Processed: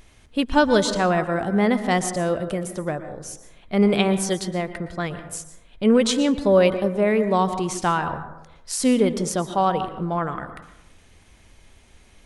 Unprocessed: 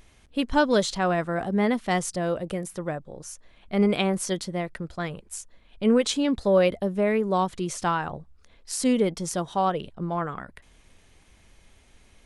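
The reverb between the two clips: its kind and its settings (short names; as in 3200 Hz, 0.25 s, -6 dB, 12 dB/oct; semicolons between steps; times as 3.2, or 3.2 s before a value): plate-style reverb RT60 0.87 s, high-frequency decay 0.35×, pre-delay 0.105 s, DRR 10.5 dB; gain +3.5 dB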